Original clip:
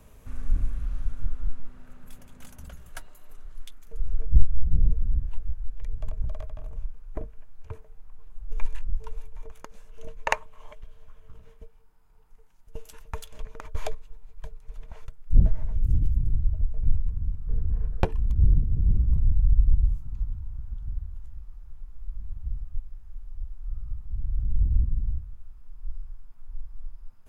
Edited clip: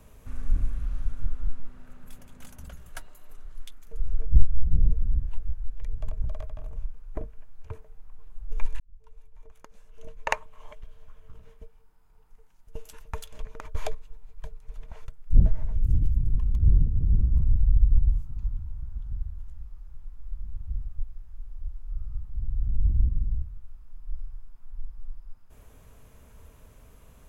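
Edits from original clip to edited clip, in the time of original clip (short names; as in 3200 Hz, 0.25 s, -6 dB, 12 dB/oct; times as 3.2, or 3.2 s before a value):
8.8–10.68 fade in
16.38–18.14 cut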